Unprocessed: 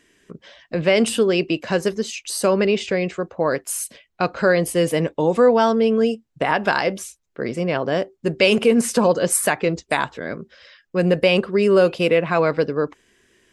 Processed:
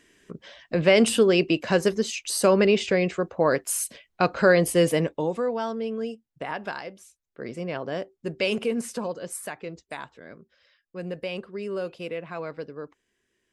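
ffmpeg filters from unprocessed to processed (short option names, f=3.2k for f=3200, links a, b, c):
-af "volume=9dB,afade=t=out:st=4.82:d=0.6:silence=0.266073,afade=t=out:st=6.62:d=0.34:silence=0.446684,afade=t=in:st=6.96:d=0.54:silence=0.316228,afade=t=out:st=8.54:d=0.65:silence=0.473151"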